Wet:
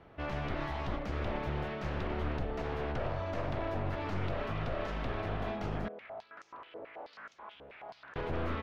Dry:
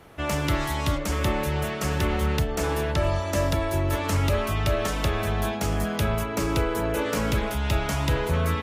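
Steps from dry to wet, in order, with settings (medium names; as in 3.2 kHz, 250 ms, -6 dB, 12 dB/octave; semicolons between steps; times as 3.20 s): one-sided wavefolder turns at -26.5 dBFS; peaking EQ 660 Hz +2.5 dB 0.28 oct; peak limiter -17.5 dBFS, peak gain reduction 4.5 dB; distance through air 270 m; 5.88–8.16 s: step-sequenced band-pass 9.3 Hz 510–6400 Hz; trim -6.5 dB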